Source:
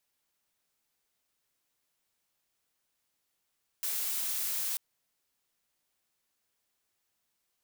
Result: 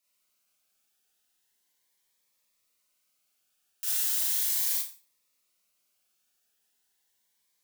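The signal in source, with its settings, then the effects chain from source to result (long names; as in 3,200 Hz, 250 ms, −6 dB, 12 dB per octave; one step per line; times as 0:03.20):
noise blue, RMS −33 dBFS 0.94 s
low-shelf EQ 480 Hz −8 dB
four-comb reverb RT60 0.35 s, combs from 30 ms, DRR −4 dB
phaser whose notches keep moving one way rising 0.37 Hz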